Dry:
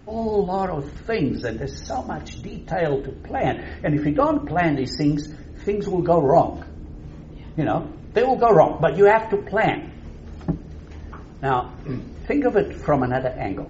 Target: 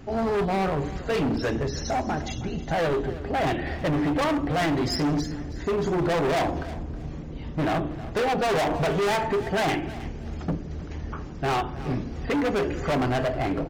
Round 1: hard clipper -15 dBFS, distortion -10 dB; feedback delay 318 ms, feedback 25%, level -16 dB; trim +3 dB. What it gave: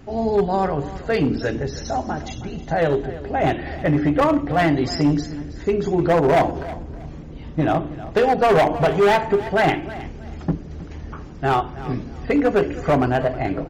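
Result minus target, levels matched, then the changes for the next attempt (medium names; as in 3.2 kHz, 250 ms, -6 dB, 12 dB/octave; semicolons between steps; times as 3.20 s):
hard clipper: distortion -7 dB
change: hard clipper -25 dBFS, distortion -3 dB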